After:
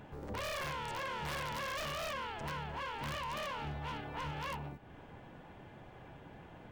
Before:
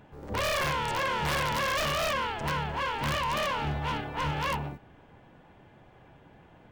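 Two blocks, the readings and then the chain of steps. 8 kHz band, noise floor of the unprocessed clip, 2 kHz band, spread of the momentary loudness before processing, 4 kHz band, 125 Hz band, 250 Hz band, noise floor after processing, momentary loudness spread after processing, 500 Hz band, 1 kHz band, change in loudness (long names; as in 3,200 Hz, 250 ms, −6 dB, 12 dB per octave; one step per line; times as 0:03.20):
−10.5 dB, −56 dBFS, −10.5 dB, 5 LU, −10.5 dB, −9.5 dB, −9.5 dB, −55 dBFS, 16 LU, −10.0 dB, −10.0 dB, −10.5 dB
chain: downward compressor 3 to 1, threshold −45 dBFS, peak gain reduction 13 dB
level +2 dB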